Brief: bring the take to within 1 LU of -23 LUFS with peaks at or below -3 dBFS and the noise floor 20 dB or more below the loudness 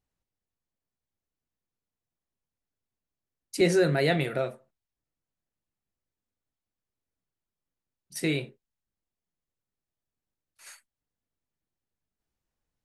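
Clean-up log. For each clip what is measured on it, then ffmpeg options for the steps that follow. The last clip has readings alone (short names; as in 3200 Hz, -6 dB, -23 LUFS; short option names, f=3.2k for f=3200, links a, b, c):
loudness -26.5 LUFS; peak -11.5 dBFS; loudness target -23.0 LUFS
-> -af "volume=3.5dB"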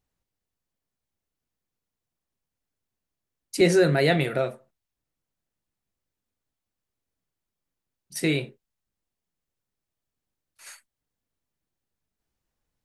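loudness -23.0 LUFS; peak -8.0 dBFS; noise floor -87 dBFS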